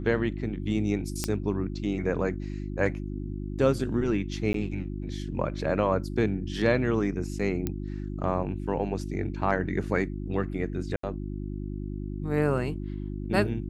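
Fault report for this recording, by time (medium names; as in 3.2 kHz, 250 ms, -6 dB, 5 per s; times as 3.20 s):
hum 50 Hz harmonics 7 -34 dBFS
1.24 s: pop -11 dBFS
4.53–4.54 s: dropout 13 ms
7.67 s: pop -15 dBFS
10.96–11.03 s: dropout 74 ms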